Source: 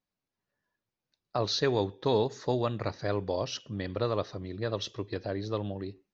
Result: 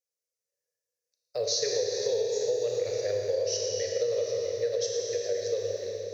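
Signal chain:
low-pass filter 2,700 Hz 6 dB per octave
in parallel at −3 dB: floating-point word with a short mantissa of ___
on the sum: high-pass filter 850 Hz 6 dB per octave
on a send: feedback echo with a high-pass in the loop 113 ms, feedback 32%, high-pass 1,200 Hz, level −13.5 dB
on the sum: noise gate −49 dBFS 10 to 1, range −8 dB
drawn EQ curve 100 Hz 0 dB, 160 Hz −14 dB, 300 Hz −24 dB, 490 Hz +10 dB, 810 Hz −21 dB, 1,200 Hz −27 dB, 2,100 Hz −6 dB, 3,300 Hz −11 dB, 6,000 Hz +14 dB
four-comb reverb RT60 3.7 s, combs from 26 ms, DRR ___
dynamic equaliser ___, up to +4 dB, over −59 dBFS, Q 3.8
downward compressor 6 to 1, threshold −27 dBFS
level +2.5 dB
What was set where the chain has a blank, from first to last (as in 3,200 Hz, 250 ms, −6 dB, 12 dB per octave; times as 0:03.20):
8 bits, −0.5 dB, 1,800 Hz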